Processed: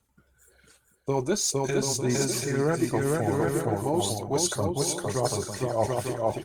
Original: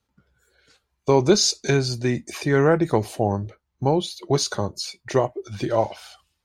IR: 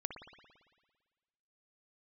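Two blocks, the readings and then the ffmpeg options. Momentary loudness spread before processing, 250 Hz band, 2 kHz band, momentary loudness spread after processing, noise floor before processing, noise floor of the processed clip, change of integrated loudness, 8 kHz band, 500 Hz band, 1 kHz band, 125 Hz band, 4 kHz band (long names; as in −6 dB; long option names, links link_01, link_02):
12 LU, −4.0 dB, −5.5 dB, 4 LU, −77 dBFS, −68 dBFS, −4.0 dB, +0.5 dB, −4.5 dB, −4.0 dB, −4.5 dB, −6.5 dB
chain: -af "aphaser=in_gain=1:out_gain=1:delay=3.5:decay=0.43:speed=1.9:type=sinusoidal,highshelf=frequency=6400:width_type=q:width=1.5:gain=9,aecho=1:1:460|736|901.6|1001|1061:0.631|0.398|0.251|0.158|0.1,areverse,acompressor=threshold=-22dB:ratio=6,areverse" -ar 48000 -c:a libopus -b:a 48k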